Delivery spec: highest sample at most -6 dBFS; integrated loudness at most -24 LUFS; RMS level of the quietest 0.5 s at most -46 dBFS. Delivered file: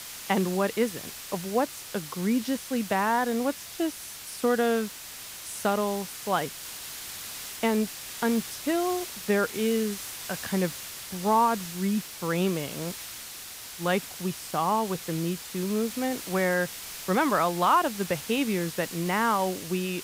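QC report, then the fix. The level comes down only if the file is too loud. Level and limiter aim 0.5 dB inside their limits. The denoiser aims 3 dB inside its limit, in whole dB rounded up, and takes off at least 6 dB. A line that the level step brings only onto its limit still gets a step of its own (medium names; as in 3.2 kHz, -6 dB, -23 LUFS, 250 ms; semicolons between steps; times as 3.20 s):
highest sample -10.5 dBFS: pass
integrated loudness -28.0 LUFS: pass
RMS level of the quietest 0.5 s -42 dBFS: fail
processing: noise reduction 7 dB, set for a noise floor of -42 dBFS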